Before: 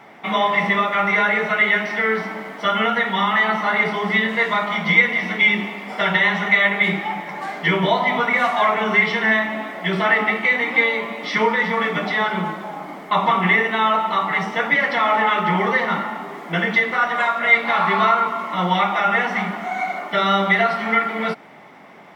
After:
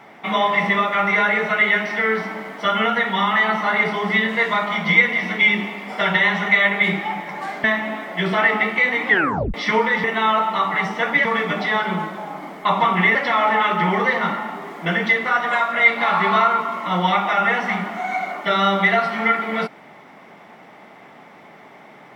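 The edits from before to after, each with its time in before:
7.64–9.31 s: delete
10.75 s: tape stop 0.46 s
13.61–14.82 s: move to 11.71 s

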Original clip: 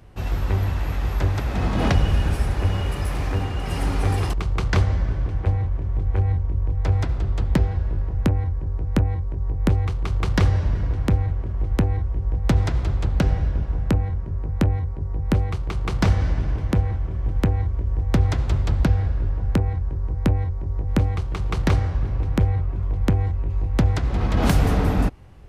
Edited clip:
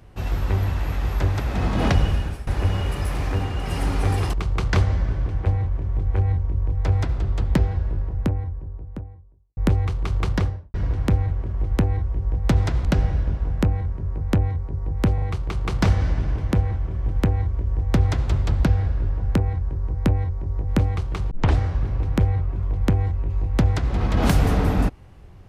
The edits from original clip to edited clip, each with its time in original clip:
2.03–2.47 s: fade out, to -17.5 dB
7.62–9.57 s: studio fade out
10.20–10.74 s: studio fade out
12.85–13.13 s: delete
15.42 s: stutter 0.04 s, 3 plays
21.51 s: tape start 0.26 s

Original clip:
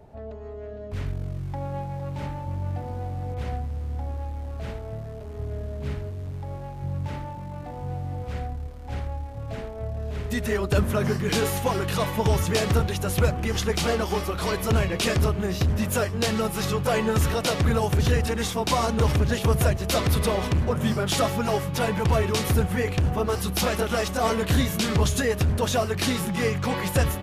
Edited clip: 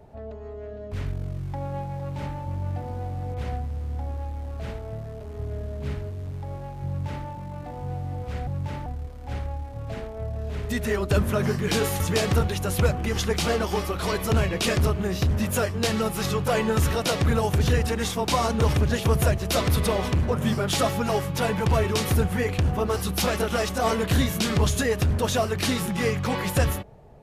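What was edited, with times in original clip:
6.87–7.26 s: copy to 8.47 s
11.61–12.39 s: delete

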